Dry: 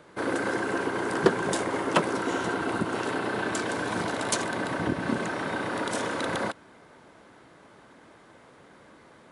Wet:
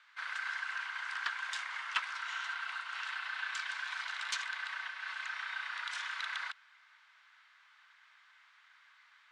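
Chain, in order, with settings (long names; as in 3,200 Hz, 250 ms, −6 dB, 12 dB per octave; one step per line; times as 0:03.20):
Bessel high-pass filter 2,100 Hz, order 6
high-frequency loss of the air 120 metres
in parallel at −9 dB: hard clipping −34 dBFS, distortion −13 dB
on the sum: high-shelf EQ 7,200 Hz −10 dB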